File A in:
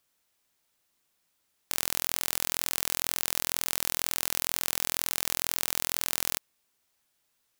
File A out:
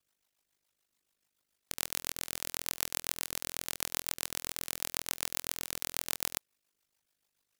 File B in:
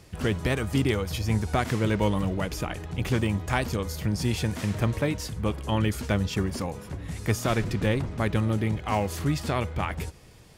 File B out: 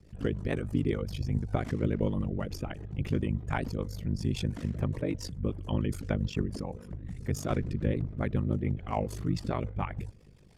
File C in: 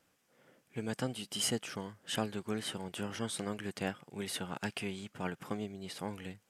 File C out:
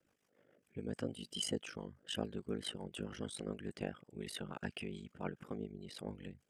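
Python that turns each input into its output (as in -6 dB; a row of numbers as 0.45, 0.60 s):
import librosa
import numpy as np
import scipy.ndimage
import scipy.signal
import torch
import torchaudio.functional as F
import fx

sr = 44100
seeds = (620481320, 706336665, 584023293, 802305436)

y = fx.envelope_sharpen(x, sr, power=1.5)
y = y * np.sin(2.0 * np.pi * 25.0 * np.arange(len(y)) / sr)
y = fx.rotary(y, sr, hz=7.0)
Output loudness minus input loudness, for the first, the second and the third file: -6.5, -5.0, -5.0 LU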